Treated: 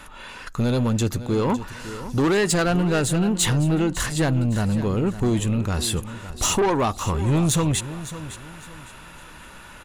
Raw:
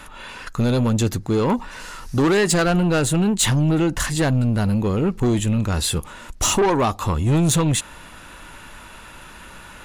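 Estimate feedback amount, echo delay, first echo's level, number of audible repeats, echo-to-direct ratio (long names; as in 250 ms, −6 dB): 31%, 557 ms, −13.5 dB, 3, −13.0 dB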